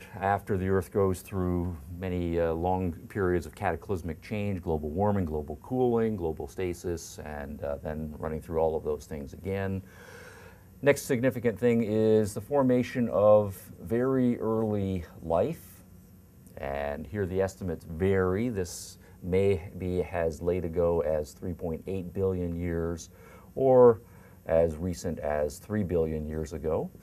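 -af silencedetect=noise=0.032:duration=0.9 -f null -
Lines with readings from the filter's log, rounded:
silence_start: 9.79
silence_end: 10.83 | silence_duration: 1.04
silence_start: 15.52
silence_end: 16.57 | silence_duration: 1.05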